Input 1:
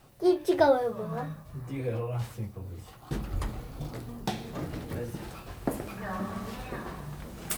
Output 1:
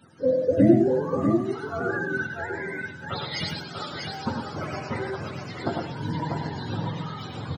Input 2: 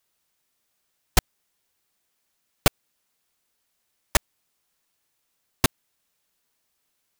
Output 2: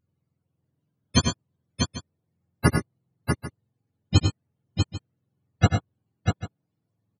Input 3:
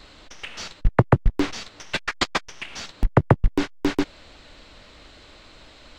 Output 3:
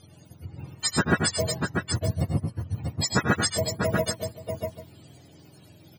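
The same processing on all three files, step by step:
frequency axis turned over on the octave scale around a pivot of 430 Hz
multi-tap delay 86/99/117/643/793 ms −13/−7/−11.5/−5/−16.5 dB
loudness normalisation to −27 LKFS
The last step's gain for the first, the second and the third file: +5.5, +5.5, −2.0 decibels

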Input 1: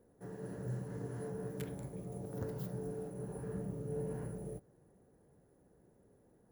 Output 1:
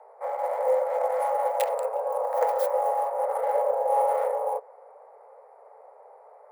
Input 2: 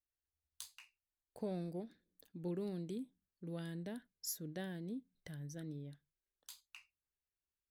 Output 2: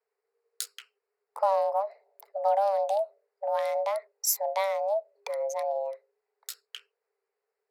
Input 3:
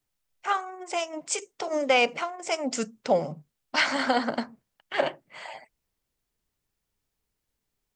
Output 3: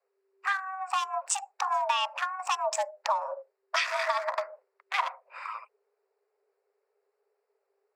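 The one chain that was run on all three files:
adaptive Wiener filter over 15 samples
downward compressor 6 to 1, threshold −31 dBFS
frequency shifter +390 Hz
normalise the peak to −12 dBFS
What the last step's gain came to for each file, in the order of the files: +16.5, +16.0, +6.0 decibels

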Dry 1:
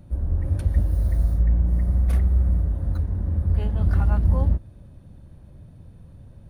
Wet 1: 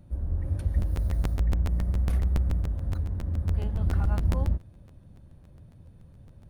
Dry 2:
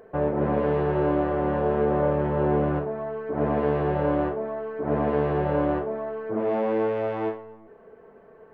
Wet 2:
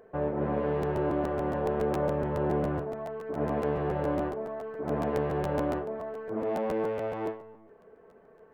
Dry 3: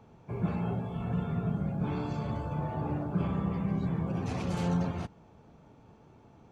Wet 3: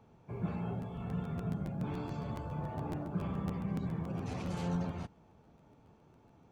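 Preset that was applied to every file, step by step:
regular buffer underruns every 0.14 s, samples 512, repeat, from 0:00.81
level −5.5 dB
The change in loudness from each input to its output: −5.5, −5.5, −5.5 LU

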